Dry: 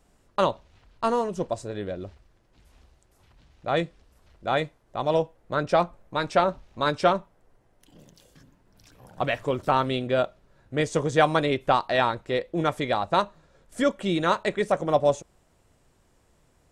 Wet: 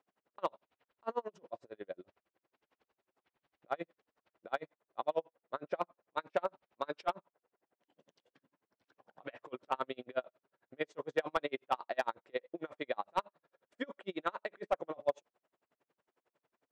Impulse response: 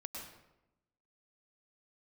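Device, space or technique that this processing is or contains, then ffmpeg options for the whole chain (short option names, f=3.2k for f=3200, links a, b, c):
helicopter radio: -af "highpass=350,lowpass=2.8k,aeval=exprs='val(0)*pow(10,-38*(0.5-0.5*cos(2*PI*11*n/s))/20)':c=same,asoftclip=type=hard:threshold=-15.5dB,volume=-5.5dB"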